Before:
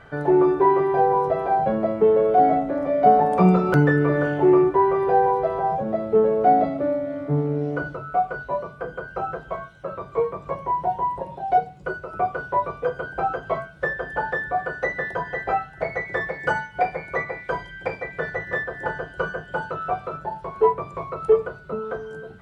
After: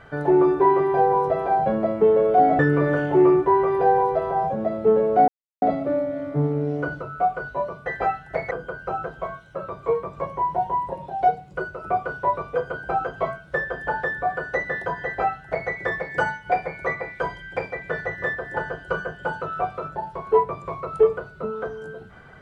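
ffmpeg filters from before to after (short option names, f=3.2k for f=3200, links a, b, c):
-filter_complex "[0:a]asplit=5[a][b][c][d][e];[a]atrim=end=2.592[f];[b]atrim=start=3.868:end=6.56,asetpts=PTS-STARTPTS,afade=t=out:st=2.688:d=0.004:c=hsin,apad=pad_dur=0.34[g];[c]atrim=start=6.56:end=8.802,asetpts=PTS-STARTPTS,afade=t=in:d=0.004:c=hsin[h];[d]atrim=start=15.328:end=15.982[i];[e]atrim=start=8.798[j];[g][h]concat=n=2:v=0:a=1[k];[f][k]acrossfade=d=0.004:c1=hsin:c2=hsin[l];[l][i]acrossfade=d=0.004:c1=hsin:c2=hsin[m];[m][j]acrossfade=d=0.004:c1=hsin:c2=hsin"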